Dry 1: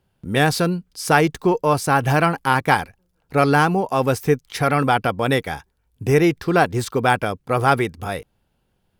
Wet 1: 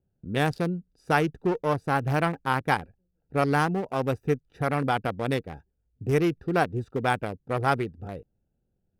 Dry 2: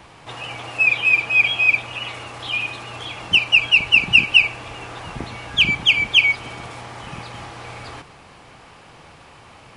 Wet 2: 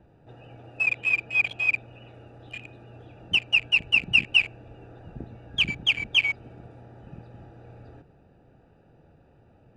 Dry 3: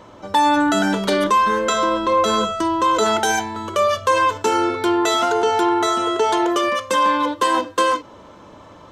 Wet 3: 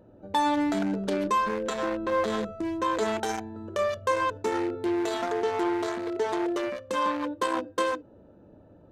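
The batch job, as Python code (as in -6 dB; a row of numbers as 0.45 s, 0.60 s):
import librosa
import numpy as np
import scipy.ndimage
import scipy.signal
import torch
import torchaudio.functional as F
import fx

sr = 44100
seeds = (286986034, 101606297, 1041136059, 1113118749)

y = fx.wiener(x, sr, points=41)
y = y * librosa.db_to_amplitude(-6.5)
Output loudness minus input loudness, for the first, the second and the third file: -7.5 LU, -7.5 LU, -10.0 LU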